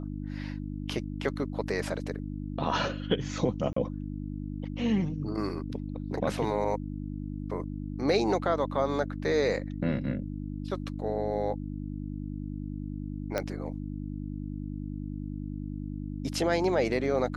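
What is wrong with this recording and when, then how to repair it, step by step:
hum 50 Hz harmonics 6 -36 dBFS
3.73–3.76 gap 34 ms
13.38 pop -15 dBFS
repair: de-click; de-hum 50 Hz, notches 6; interpolate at 3.73, 34 ms

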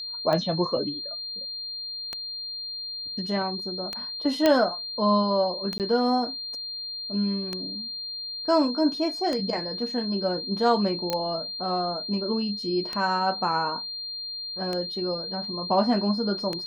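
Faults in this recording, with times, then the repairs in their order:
tick 33 1/3 rpm -15 dBFS
tone 4200 Hz -32 dBFS
4.46 pop -7 dBFS
5.78–5.8 gap 18 ms
11.1 pop -12 dBFS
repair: de-click; notch 4200 Hz, Q 30; interpolate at 5.78, 18 ms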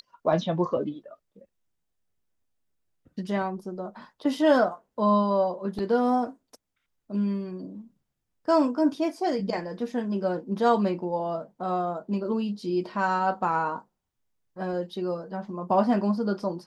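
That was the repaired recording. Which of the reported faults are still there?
none

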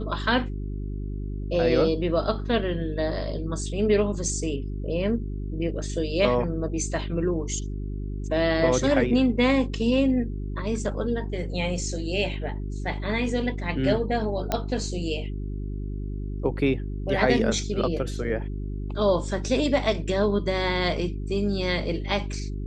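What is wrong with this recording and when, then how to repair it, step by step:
hum 50 Hz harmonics 8 -31 dBFS
14.52 pop -10 dBFS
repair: de-click; de-hum 50 Hz, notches 8

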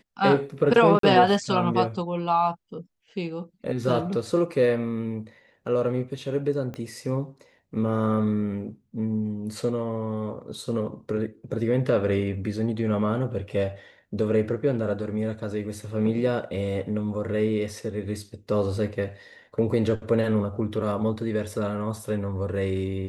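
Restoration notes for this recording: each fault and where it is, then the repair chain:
0.99–1.03 gap 43 ms
6.74 pop -23 dBFS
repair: de-click; interpolate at 0.99, 43 ms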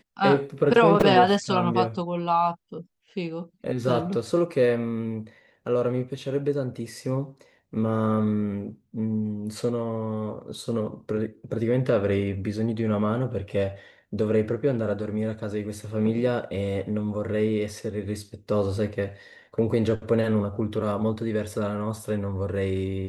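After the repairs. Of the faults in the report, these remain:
6.74 pop

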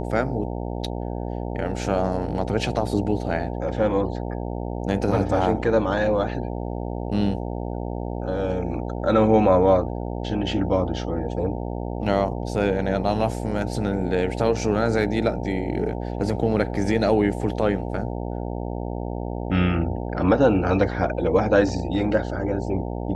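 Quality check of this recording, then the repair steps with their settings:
buzz 60 Hz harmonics 15 -29 dBFS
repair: de-hum 60 Hz, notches 15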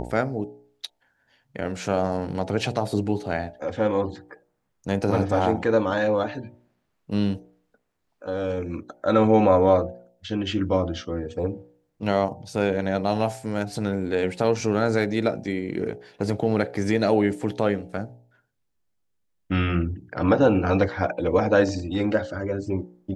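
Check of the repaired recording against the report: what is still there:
none

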